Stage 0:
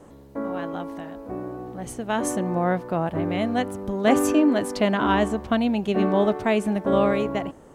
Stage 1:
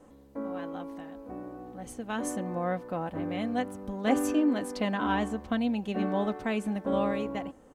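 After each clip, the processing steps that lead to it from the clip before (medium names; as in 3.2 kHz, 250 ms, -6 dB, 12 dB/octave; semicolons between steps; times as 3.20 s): comb 3.9 ms, depth 44%; trim -8.5 dB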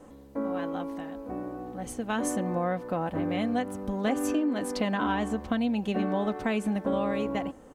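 compression 6:1, threshold -29 dBFS, peak gain reduction 9.5 dB; trim +5 dB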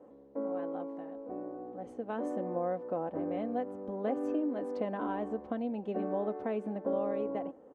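band-pass filter 480 Hz, Q 1.3; trim -1.5 dB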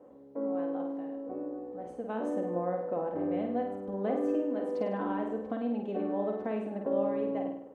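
flutter echo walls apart 8.7 m, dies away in 0.64 s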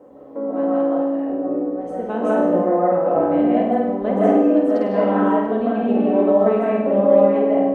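reverberation RT60 0.65 s, pre-delay 110 ms, DRR -5.5 dB; trim +8.5 dB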